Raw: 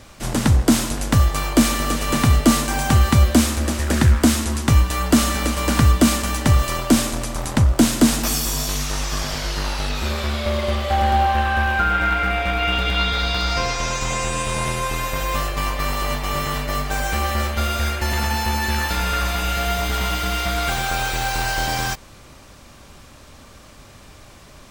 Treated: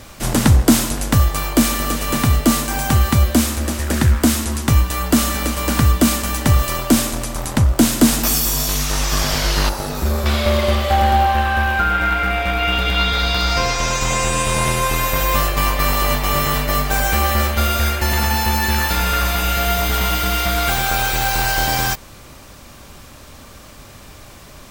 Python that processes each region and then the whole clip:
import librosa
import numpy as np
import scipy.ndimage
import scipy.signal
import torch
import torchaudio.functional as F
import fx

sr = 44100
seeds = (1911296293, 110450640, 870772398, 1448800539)

y = fx.chain(x, sr, fx.peak_eq(hz=2900.0, db=-14.5, octaves=2.0),
    fx.hum_notches(base_hz=50, count=6),
    fx.overload_stage(gain_db=19.0), at=(9.69, 10.26))
y = fx.peak_eq(y, sr, hz=15000.0, db=8.5, octaves=0.6)
y = fx.rider(y, sr, range_db=10, speed_s=2.0)
y = F.gain(torch.from_numpy(y), 2.0).numpy()